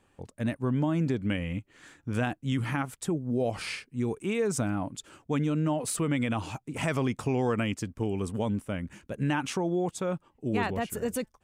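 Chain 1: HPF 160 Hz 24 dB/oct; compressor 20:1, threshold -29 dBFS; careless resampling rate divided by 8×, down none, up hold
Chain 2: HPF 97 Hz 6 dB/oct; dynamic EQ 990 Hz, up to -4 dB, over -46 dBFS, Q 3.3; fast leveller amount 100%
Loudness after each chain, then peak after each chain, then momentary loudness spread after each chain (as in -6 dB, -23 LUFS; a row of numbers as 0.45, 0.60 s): -35.5, -25.5 LUFS; -19.0, -8.5 dBFS; 6, 2 LU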